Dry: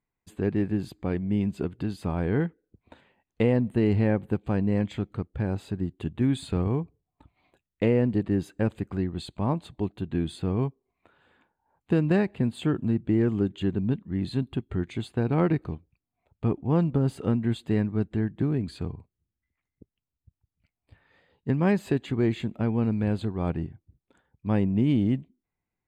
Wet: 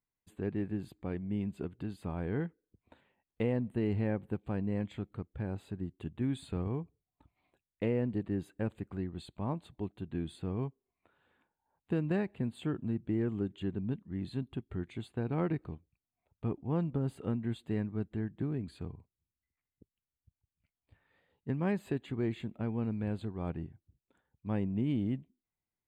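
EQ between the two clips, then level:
parametric band 5,500 Hz −11 dB 0.4 octaves
−9.0 dB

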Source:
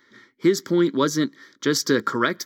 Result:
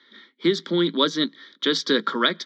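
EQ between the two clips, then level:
Chebyshev high-pass with heavy ripple 160 Hz, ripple 3 dB
low-pass with resonance 3,600 Hz, resonance Q 5.6
0.0 dB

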